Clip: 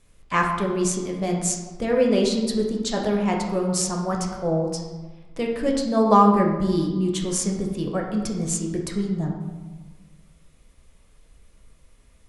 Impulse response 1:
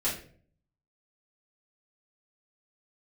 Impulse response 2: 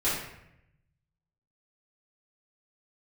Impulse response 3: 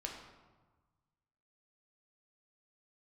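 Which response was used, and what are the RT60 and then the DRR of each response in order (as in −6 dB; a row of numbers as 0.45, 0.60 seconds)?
3; 0.50, 0.80, 1.3 seconds; −9.0, −13.0, −0.5 decibels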